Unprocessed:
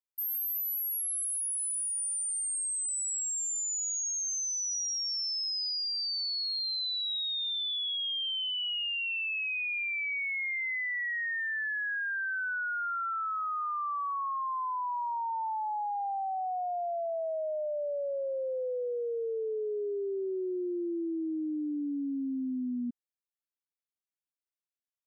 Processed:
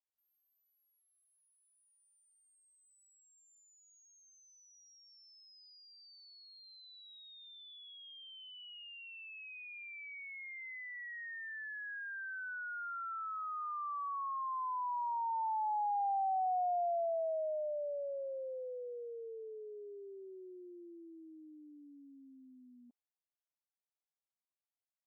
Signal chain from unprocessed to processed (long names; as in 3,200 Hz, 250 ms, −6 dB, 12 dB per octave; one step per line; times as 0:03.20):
four-pole ladder band-pass 850 Hz, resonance 50%
level +4.5 dB